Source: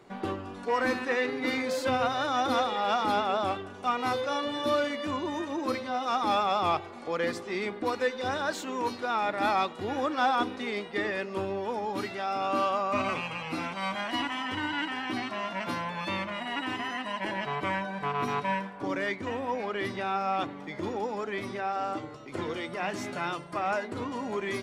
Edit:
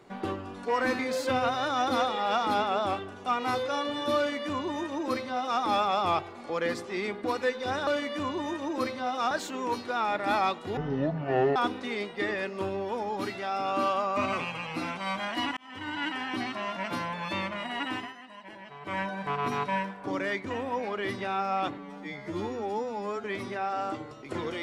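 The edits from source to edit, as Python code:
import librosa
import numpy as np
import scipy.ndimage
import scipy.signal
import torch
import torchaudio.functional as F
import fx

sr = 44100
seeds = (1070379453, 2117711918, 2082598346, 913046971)

y = fx.edit(x, sr, fx.cut(start_s=0.99, length_s=0.58),
    fx.duplicate(start_s=4.75, length_s=1.44, to_s=8.45),
    fx.speed_span(start_s=9.91, length_s=0.41, speed=0.52),
    fx.fade_in_span(start_s=14.33, length_s=0.5),
    fx.fade_down_up(start_s=16.7, length_s=1.07, db=-13.5, fade_s=0.2),
    fx.stretch_span(start_s=20.54, length_s=0.73, factor=2.0), tone=tone)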